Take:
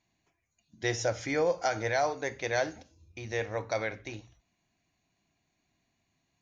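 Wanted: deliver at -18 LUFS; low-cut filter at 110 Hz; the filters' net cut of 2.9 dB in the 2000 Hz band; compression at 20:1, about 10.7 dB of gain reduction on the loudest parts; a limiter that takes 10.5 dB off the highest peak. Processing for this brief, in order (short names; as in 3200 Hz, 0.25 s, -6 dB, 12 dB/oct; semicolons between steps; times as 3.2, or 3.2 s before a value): HPF 110 Hz; bell 2000 Hz -3.5 dB; compressor 20:1, threshold -34 dBFS; gain +25 dB; limiter -6 dBFS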